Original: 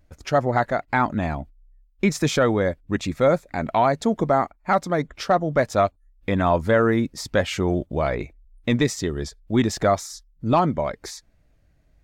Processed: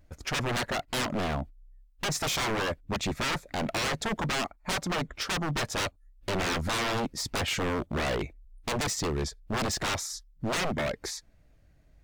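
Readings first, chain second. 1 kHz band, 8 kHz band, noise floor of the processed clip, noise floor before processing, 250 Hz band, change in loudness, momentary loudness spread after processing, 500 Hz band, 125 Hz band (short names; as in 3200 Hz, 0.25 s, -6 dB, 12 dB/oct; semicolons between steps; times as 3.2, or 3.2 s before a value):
-9.5 dB, +1.5 dB, -61 dBFS, -61 dBFS, -10.5 dB, -8.0 dB, 6 LU, -12.0 dB, -8.5 dB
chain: wavefolder -24 dBFS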